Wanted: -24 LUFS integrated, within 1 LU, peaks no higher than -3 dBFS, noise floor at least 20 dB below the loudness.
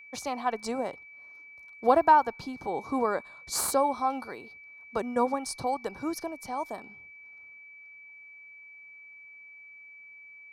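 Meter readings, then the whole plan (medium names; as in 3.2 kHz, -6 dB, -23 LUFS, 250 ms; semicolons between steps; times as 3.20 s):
steady tone 2.3 kHz; tone level -47 dBFS; loudness -29.0 LUFS; peak level -8.5 dBFS; loudness target -24.0 LUFS
-> band-stop 2.3 kHz, Q 30; trim +5 dB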